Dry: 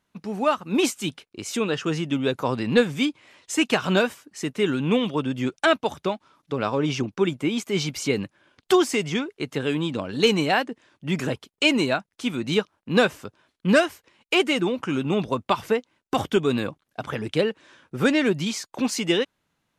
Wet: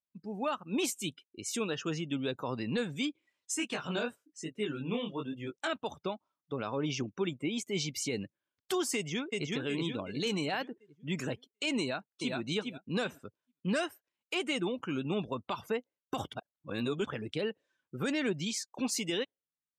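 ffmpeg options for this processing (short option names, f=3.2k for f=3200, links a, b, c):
-filter_complex "[0:a]asplit=3[a][b][c];[a]afade=t=out:st=3.53:d=0.02[d];[b]flanger=delay=18:depth=7.2:speed=1.1,afade=t=in:st=3.53:d=0.02,afade=t=out:st=5.69:d=0.02[e];[c]afade=t=in:st=5.69:d=0.02[f];[d][e][f]amix=inputs=3:normalize=0,asplit=2[g][h];[h]afade=t=in:st=8.95:d=0.01,afade=t=out:st=9.51:d=0.01,aecho=0:1:370|740|1110|1480|1850|2220|2590:0.794328|0.397164|0.198582|0.099291|0.0496455|0.0248228|0.0124114[i];[g][i]amix=inputs=2:normalize=0,asplit=2[j][k];[k]afade=t=in:st=11.8:d=0.01,afade=t=out:st=12.36:d=0.01,aecho=0:1:410|820|1230:0.562341|0.112468|0.0224937[l];[j][l]amix=inputs=2:normalize=0,asplit=3[m][n][o];[m]atrim=end=16.332[p];[n]atrim=start=16.328:end=17.052,asetpts=PTS-STARTPTS,areverse[q];[o]atrim=start=17.048[r];[p][q]acrossfade=d=0.004:c1=hsin:c2=hsin[s];[s][r]acrossfade=d=0.004:c1=hsin:c2=hsin,aemphasis=mode=production:type=cd,afftdn=nr=23:nf=-38,alimiter=limit=-14dB:level=0:latency=1:release=38,volume=-9dB"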